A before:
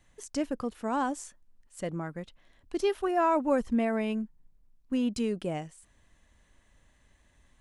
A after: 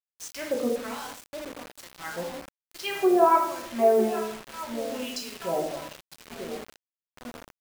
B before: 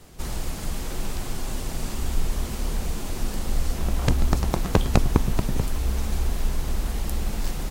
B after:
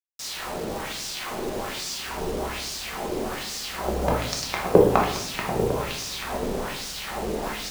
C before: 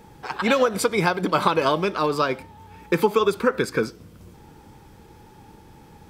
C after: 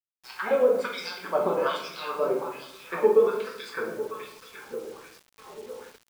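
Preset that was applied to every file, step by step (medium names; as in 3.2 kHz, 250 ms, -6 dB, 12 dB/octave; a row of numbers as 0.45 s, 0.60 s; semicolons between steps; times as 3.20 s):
shuffle delay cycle 1270 ms, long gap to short 3:1, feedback 38%, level -13.5 dB; LFO band-pass sine 1.2 Hz 410–5500 Hz; simulated room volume 200 m³, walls mixed, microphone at 1.1 m; bit crusher 8-bit; normalise loudness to -27 LUFS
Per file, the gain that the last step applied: +8.5 dB, +10.5 dB, -2.0 dB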